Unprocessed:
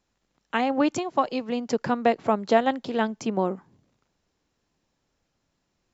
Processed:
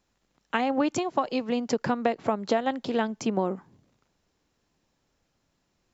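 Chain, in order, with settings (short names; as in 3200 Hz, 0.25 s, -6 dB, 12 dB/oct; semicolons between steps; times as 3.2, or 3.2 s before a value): compressor 6:1, threshold -22 dBFS, peak gain reduction 9 dB; gain +1.5 dB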